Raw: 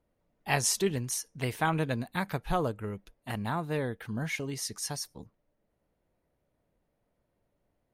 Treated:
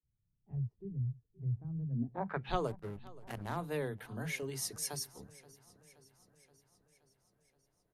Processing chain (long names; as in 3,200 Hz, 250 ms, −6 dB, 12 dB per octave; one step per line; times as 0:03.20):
parametric band 400 Hz +6 dB 0.27 octaves
multiband delay without the direct sound highs, lows 30 ms, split 240 Hz
0:02.67–0:03.57: slack as between gear wheels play −32 dBFS
low-pass filter sweep 120 Hz → 12,000 Hz, 0:01.89–0:02.71
feedback echo with a swinging delay time 525 ms, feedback 62%, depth 54 cents, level −21 dB
level −5.5 dB